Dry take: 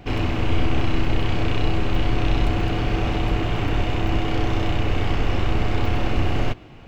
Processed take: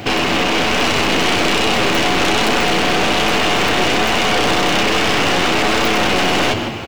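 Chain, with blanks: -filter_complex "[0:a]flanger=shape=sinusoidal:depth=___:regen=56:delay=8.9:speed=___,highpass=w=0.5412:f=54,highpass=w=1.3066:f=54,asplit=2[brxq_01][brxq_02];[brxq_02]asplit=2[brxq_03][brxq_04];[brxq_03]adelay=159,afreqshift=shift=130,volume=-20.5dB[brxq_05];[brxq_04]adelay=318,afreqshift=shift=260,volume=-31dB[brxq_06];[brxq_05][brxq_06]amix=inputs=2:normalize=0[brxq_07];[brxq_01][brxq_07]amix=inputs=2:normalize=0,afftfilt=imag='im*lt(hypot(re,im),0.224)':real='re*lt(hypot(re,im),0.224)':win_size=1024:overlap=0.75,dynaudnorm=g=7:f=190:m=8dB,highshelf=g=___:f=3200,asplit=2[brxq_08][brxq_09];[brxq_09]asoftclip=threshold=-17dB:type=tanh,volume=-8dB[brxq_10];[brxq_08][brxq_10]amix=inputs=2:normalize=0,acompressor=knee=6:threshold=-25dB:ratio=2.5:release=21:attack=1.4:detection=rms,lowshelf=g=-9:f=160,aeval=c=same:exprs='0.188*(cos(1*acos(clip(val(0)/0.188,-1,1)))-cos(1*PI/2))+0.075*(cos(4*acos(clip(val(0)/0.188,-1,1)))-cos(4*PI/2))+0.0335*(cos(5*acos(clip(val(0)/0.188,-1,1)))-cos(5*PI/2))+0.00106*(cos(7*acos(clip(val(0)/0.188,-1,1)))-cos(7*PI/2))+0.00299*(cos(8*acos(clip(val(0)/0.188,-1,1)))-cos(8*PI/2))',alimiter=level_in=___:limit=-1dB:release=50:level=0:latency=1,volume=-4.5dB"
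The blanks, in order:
2.1, 1.2, 7.5, 16.5dB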